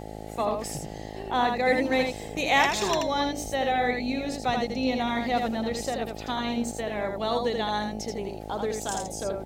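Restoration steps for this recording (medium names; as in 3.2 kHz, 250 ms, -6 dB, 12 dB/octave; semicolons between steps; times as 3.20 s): de-hum 53.2 Hz, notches 16; inverse comb 81 ms -4.5 dB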